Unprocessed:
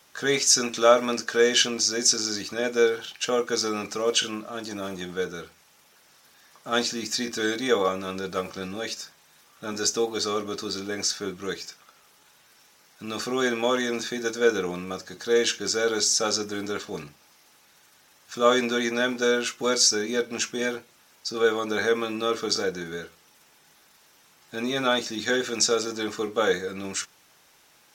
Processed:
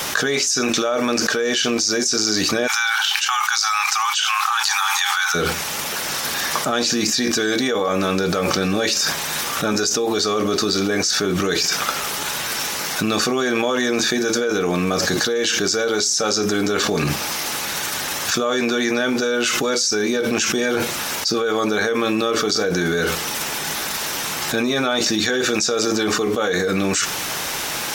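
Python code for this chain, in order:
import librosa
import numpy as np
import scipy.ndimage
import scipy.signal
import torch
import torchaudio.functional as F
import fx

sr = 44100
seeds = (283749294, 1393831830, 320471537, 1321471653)

y = fx.brickwall_highpass(x, sr, low_hz=760.0, at=(2.66, 5.34), fade=0.02)
y = fx.env_flatten(y, sr, amount_pct=100)
y = F.gain(torch.from_numpy(y), -7.0).numpy()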